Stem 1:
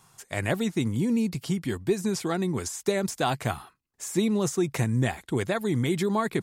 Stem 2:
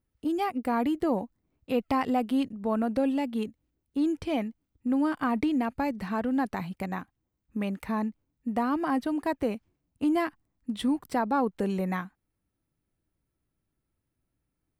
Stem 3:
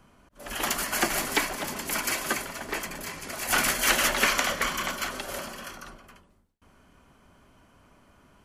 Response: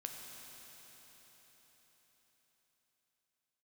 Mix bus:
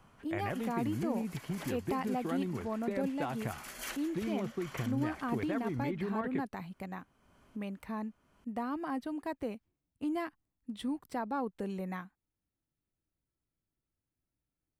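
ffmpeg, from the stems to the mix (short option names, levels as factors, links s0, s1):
-filter_complex "[0:a]acompressor=threshold=0.0447:ratio=6,lowpass=f=2600:w=0.5412,lowpass=f=2600:w=1.3066,volume=0.501[s0];[1:a]volume=0.355,asplit=2[s1][s2];[2:a]acompressor=threshold=0.0224:ratio=6,volume=0.531[s3];[s2]apad=whole_len=372411[s4];[s3][s4]sidechaincompress=threshold=0.00355:ratio=4:attack=6.4:release=448[s5];[s0][s1][s5]amix=inputs=3:normalize=0"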